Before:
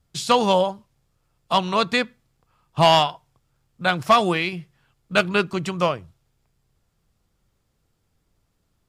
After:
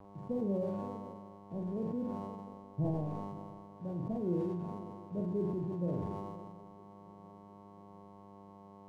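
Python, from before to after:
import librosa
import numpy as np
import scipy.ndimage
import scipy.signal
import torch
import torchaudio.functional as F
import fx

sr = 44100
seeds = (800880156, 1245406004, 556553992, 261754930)

y = scipy.signal.sosfilt(scipy.signal.cheby2(4, 50, 1100.0, 'lowpass', fs=sr, output='sos'), x)
y = fx.dmg_buzz(y, sr, base_hz=100.0, harmonics=11, level_db=-43.0, tilt_db=-3, odd_only=False)
y = np.sign(y) * np.maximum(np.abs(y) - 10.0 ** (-54.5 / 20.0), 0.0)
y = fx.comb_fb(y, sr, f0_hz=290.0, decay_s=0.76, harmonics='all', damping=0.0, mix_pct=60)
y = fx.room_flutter(y, sr, wall_m=7.8, rt60_s=0.45)
y = fx.vibrato(y, sr, rate_hz=0.31, depth_cents=10.0)
y = fx.echo_swing(y, sr, ms=707, ratio=3, feedback_pct=57, wet_db=-22.5)
y = fx.sustainer(y, sr, db_per_s=26.0)
y = y * librosa.db_to_amplitude(-3.0)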